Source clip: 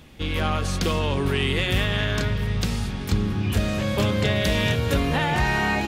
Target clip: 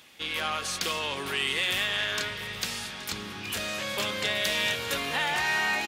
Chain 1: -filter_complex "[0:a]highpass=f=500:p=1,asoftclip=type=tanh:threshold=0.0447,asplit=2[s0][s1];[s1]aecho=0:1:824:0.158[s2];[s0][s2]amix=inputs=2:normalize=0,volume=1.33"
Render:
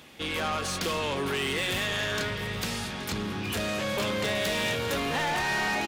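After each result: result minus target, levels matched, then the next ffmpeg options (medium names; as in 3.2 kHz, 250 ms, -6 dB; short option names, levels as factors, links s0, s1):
saturation: distortion +10 dB; 500 Hz band +5.5 dB
-filter_complex "[0:a]highpass=f=500:p=1,asoftclip=type=tanh:threshold=0.112,asplit=2[s0][s1];[s1]aecho=0:1:824:0.158[s2];[s0][s2]amix=inputs=2:normalize=0,volume=1.33"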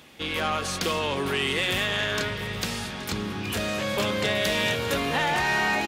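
500 Hz band +5.0 dB
-filter_complex "[0:a]highpass=f=1800:p=1,asoftclip=type=tanh:threshold=0.112,asplit=2[s0][s1];[s1]aecho=0:1:824:0.158[s2];[s0][s2]amix=inputs=2:normalize=0,volume=1.33"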